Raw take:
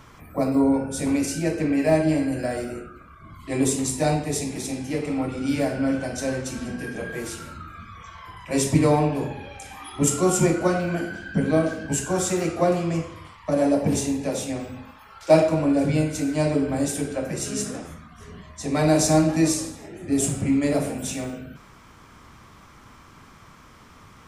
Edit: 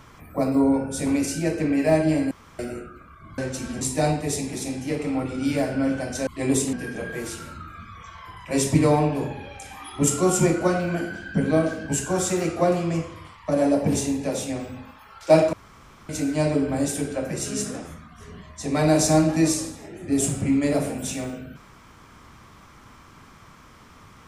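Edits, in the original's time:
2.31–2.59 room tone
3.38–3.84 swap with 6.3–6.73
15.53–16.09 room tone

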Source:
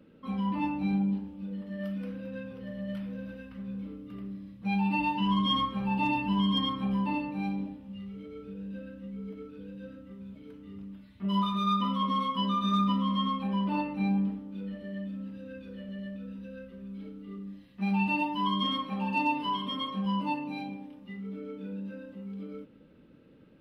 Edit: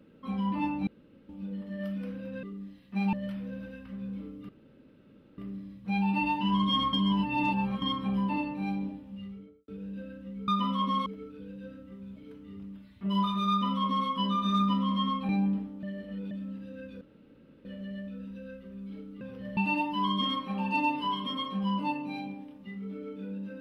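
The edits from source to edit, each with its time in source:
0.87–1.29 room tone
2.43–2.79 swap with 17.29–17.99
4.15 insert room tone 0.89 s
5.7–6.59 reverse
7.98–8.45 studio fade out
11.69–12.27 copy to 9.25
13.48–14.01 cut
14.55–15.03 reverse
15.73 insert room tone 0.64 s

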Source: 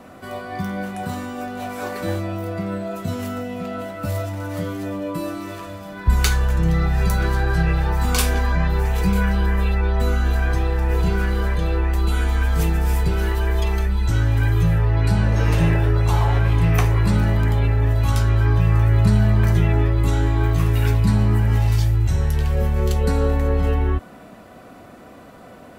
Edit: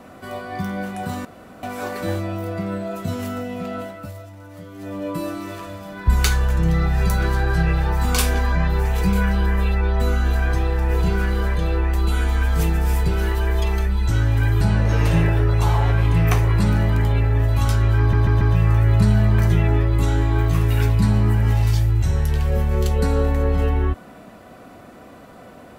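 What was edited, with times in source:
1.25–1.63 room tone
3.78–5.06 dip -12.5 dB, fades 0.35 s
14.61–15.08 cut
18.46 stutter 0.14 s, 4 plays

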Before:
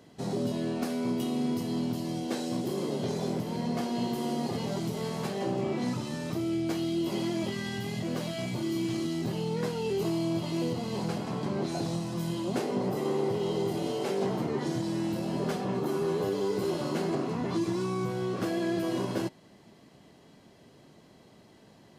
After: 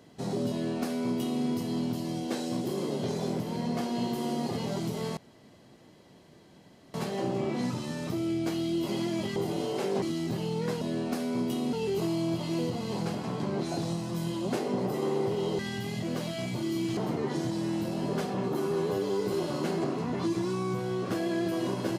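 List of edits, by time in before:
0.51–1.43 copy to 9.76
5.17 insert room tone 1.77 s
7.59–8.97 swap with 13.62–14.28

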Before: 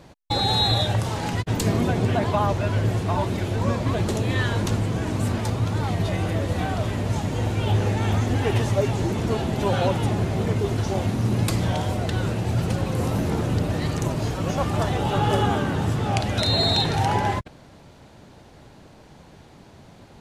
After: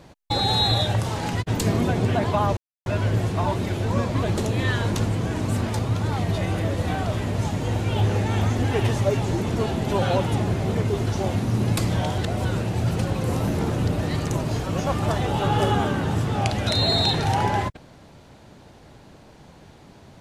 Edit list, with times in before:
2.57 insert silence 0.29 s
11.89–12.16 reverse

